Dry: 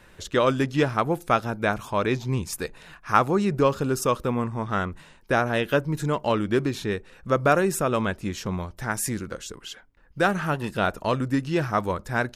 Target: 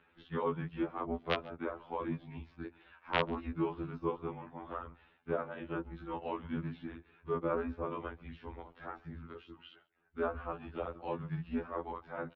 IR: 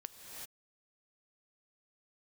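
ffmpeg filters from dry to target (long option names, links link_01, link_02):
-filter_complex "[0:a]acrossover=split=810|1300[link_01][link_02][link_03];[link_03]acompressor=threshold=-41dB:ratio=6[link_04];[link_01][link_02][link_04]amix=inputs=3:normalize=0,afftfilt=real='hypot(re,im)*cos(PI*b)':imag='0':win_size=2048:overlap=0.75,aeval=exprs='(mod(2.66*val(0)+1,2)-1)/2.66':channel_layout=same,asplit=2[link_05][link_06];[link_06]adelay=139.9,volume=-24dB,highshelf=frequency=4000:gain=-3.15[link_07];[link_05][link_07]amix=inputs=2:normalize=0,highpass=frequency=170:width_type=q:width=0.5412,highpass=frequency=170:width_type=q:width=1.307,lowpass=frequency=3500:width_type=q:width=0.5176,lowpass=frequency=3500:width_type=q:width=0.7071,lowpass=frequency=3500:width_type=q:width=1.932,afreqshift=-110,afftfilt=real='re*2*eq(mod(b,4),0)':imag='im*2*eq(mod(b,4),0)':win_size=2048:overlap=0.75,volume=1dB"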